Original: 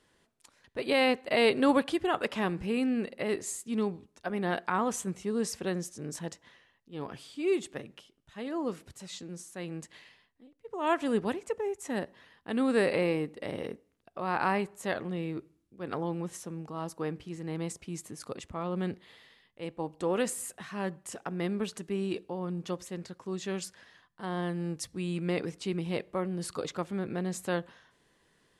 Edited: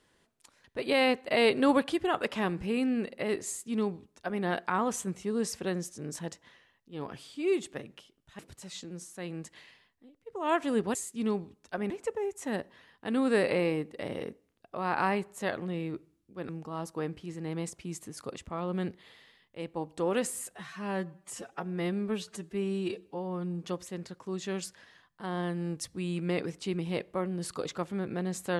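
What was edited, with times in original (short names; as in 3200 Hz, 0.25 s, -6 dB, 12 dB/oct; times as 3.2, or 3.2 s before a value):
3.47–4.42 copy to 11.33
8.39–8.77 cut
15.92–16.52 cut
20.56–22.63 stretch 1.5×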